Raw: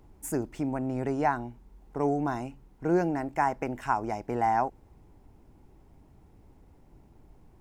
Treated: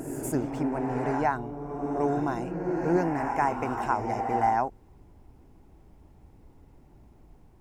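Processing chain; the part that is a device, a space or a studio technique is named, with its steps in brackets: reverse reverb (reverse; reverb RT60 2.5 s, pre-delay 86 ms, DRR 4 dB; reverse)

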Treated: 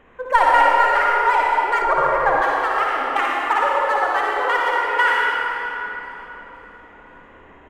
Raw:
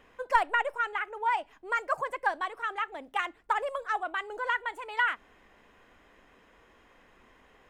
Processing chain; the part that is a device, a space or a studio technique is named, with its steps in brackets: Wiener smoothing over 9 samples; tunnel (flutter echo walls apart 10 m, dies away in 0.55 s; reverb RT60 3.8 s, pre-delay 62 ms, DRR -3.5 dB); 1.82–2.42 tilt -2.5 dB/oct; feedback echo 0.518 s, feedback 49%, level -21 dB; gain +7.5 dB

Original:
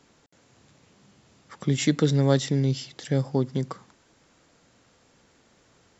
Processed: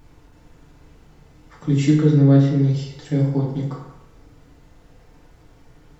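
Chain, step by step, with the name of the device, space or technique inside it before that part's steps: car interior (bell 150 Hz +7 dB 0.6 oct; high shelf 4600 Hz -7 dB; brown noise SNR 22 dB); 1.88–2.6 Bessel low-pass 3200 Hz, order 2; FDN reverb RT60 0.96 s, low-frequency decay 0.75×, high-frequency decay 0.65×, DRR -5.5 dB; gain -5.5 dB

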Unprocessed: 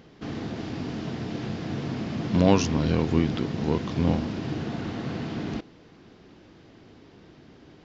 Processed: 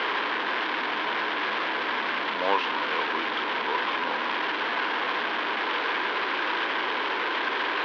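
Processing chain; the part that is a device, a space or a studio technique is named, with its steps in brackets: digital answering machine (BPF 350–3300 Hz; delta modulation 32 kbps, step -21 dBFS; speaker cabinet 500–3700 Hz, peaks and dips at 680 Hz -5 dB, 1000 Hz +9 dB, 1600 Hz +7 dB, 2200 Hz +3 dB, 3200 Hz +4 dB); gain -1 dB

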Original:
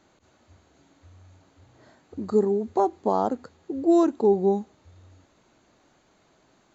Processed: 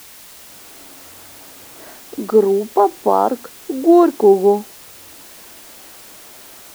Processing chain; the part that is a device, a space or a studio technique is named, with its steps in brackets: dictaphone (BPF 290–3100 Hz; AGC gain up to 15 dB; wow and flutter; white noise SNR 22 dB)

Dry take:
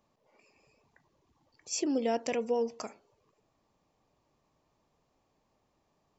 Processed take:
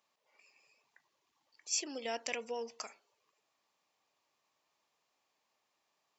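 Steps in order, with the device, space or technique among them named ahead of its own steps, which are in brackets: filter by subtraction (in parallel: LPF 2500 Hz 12 dB/oct + phase invert); 2.05–2.83 on the sum: bell 65 Hz +10.5 dB 2.6 oct

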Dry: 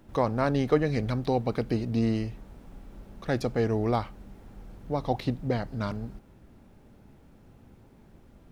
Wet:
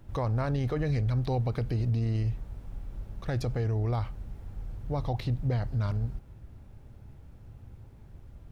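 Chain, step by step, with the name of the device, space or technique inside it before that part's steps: car stereo with a boomy subwoofer (resonant low shelf 150 Hz +9.5 dB, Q 1.5; limiter -19 dBFS, peak gain reduction 8 dB); gain -2 dB

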